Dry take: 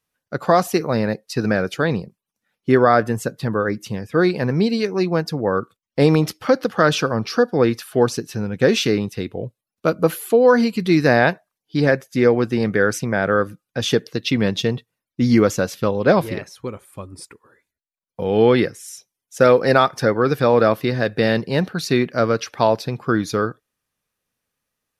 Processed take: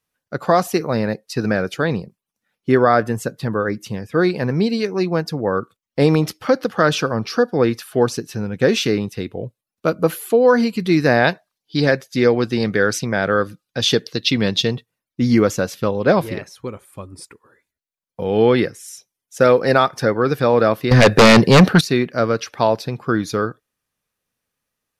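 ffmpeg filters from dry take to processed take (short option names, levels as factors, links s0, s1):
-filter_complex "[0:a]asettb=1/sr,asplit=3[s0][s1][s2];[s0]atrim=end=11.244[s3];[s1]atrim=start=11.24:end=14.75,asetpts=PTS-STARTPTS,afade=t=in:d=0.004:c=qsin,afade=t=out:st=3.506:d=0.004:c=qsin,equalizer=f=4200:t=o:w=1:g=8.5[s4];[s2]atrim=start=14.746[s5];[s3][s4]acrossfade=d=0.004:c1=hsin:c2=qsin[s6];[s6][s5]acrossfade=d=0.004:c1=qsin:c2=hsin,asettb=1/sr,asplit=3[s7][s8][s9];[s7]atrim=end=20.914[s10];[s8]atrim=start=20.91:end=21.81,asetpts=PTS-STARTPTS,afade=t=in:d=0.004:c=qsin,afade=t=out:st=0.896:d=0.004:c=qsin,aeval=exprs='0.596*sin(PI/2*3.55*val(0)/0.596)':c=same[s11];[s9]atrim=start=21.806[s12];[s10][s11]acrossfade=d=0.004:c1=hsin:c2=qsin[s13];[s13][s12]acrossfade=d=0.004:c1=qsin:c2=hsin"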